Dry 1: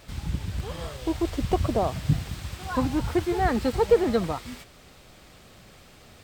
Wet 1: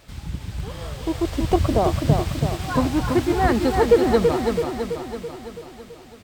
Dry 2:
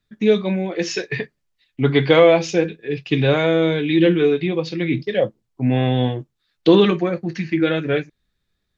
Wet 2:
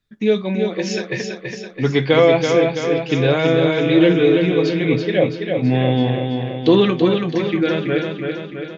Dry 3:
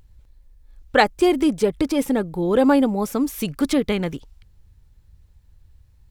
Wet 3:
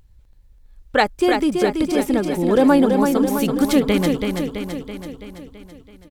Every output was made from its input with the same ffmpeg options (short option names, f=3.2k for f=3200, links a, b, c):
-af "dynaudnorm=f=170:g=13:m=6dB,aecho=1:1:331|662|993|1324|1655|1986|2317|2648:0.562|0.326|0.189|0.11|0.0636|0.0369|0.0214|0.0124,volume=-1dB"